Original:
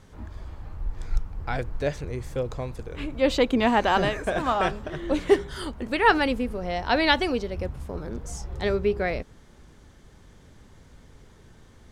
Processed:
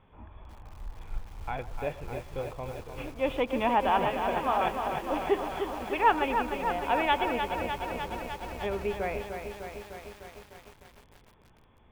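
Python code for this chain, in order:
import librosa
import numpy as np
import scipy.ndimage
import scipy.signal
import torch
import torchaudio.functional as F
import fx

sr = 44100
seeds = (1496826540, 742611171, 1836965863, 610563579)

y = scipy.signal.sosfilt(scipy.signal.cheby1(6, 9, 3500.0, 'lowpass', fs=sr, output='sos'), x)
y = fx.echo_wet_bandpass(y, sr, ms=120, feedback_pct=35, hz=930.0, wet_db=-16.0)
y = fx.echo_crushed(y, sr, ms=302, feedback_pct=80, bits=8, wet_db=-6.5)
y = y * librosa.db_to_amplitude(-1.0)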